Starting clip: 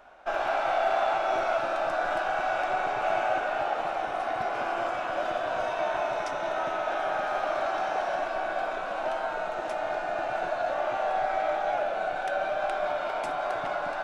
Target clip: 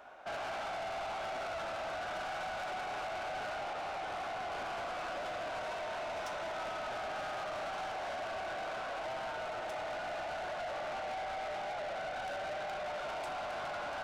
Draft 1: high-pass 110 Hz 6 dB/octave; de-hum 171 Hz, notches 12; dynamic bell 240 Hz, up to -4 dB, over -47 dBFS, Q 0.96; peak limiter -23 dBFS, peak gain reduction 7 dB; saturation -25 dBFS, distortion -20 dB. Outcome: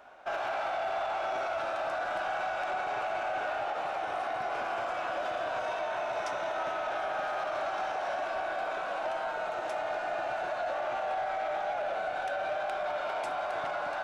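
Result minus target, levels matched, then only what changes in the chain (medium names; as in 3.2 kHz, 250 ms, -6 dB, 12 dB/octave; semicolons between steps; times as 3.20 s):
saturation: distortion -12 dB
change: saturation -37 dBFS, distortion -8 dB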